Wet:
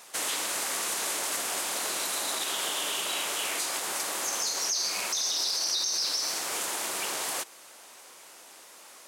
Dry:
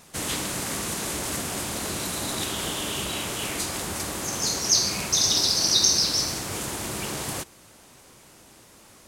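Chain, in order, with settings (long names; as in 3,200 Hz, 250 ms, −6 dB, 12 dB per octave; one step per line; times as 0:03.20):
high-pass filter 570 Hz 12 dB per octave
in parallel at +2.5 dB: downward compressor, threshold −33 dBFS, peak gain reduction 16.5 dB
on the sum: brickwall limiter −15 dBFS, peak gain reduction 10.5 dB
level −4.5 dB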